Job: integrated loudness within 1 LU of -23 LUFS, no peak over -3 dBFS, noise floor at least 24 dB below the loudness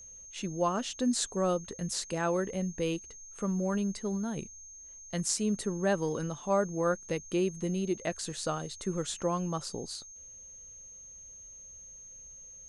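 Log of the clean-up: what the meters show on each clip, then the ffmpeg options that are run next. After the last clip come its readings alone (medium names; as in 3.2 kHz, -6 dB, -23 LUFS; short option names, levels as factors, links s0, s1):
steady tone 6.4 kHz; tone level -47 dBFS; loudness -32.5 LUFS; peak level -14.0 dBFS; loudness target -23.0 LUFS
-> -af "bandreject=f=6400:w=30"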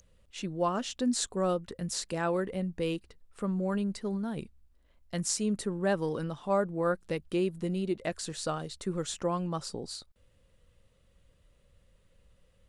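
steady tone not found; loudness -32.5 LUFS; peak level -13.5 dBFS; loudness target -23.0 LUFS
-> -af "volume=2.99"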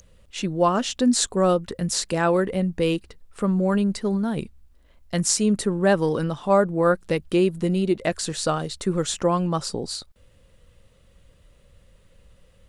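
loudness -23.0 LUFS; peak level -4.0 dBFS; noise floor -56 dBFS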